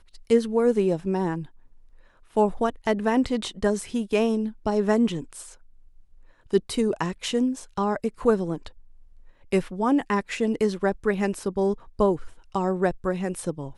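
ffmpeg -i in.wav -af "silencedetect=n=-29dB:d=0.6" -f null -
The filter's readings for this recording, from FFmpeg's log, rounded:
silence_start: 1.43
silence_end: 2.37 | silence_duration: 0.94
silence_start: 5.40
silence_end: 6.53 | silence_duration: 1.14
silence_start: 8.67
silence_end: 9.52 | silence_duration: 0.86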